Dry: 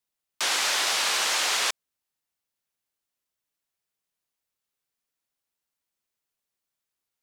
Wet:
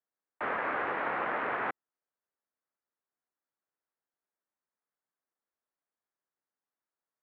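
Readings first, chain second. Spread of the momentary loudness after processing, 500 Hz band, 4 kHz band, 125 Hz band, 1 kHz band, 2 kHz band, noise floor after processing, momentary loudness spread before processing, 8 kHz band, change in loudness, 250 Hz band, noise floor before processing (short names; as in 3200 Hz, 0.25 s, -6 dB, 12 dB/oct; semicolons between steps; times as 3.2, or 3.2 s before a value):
6 LU, +2.0 dB, -30.0 dB, n/a, -1.0 dB, -6.5 dB, under -85 dBFS, 6 LU, under -40 dB, -9.5 dB, +5.5 dB, under -85 dBFS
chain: mistuned SSB -300 Hz 540–2100 Hz; Doppler distortion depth 0.13 ms; gain -1.5 dB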